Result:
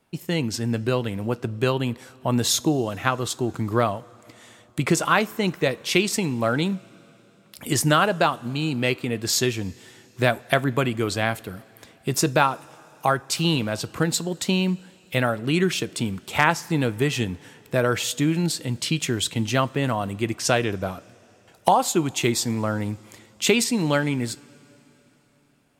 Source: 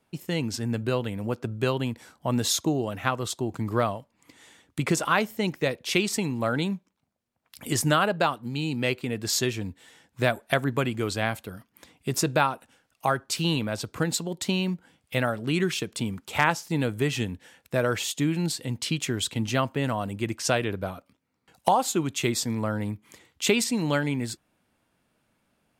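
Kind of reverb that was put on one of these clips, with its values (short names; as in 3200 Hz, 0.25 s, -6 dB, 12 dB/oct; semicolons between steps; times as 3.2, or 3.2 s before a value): two-slope reverb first 0.24 s, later 3.8 s, from -18 dB, DRR 16.5 dB; gain +3.5 dB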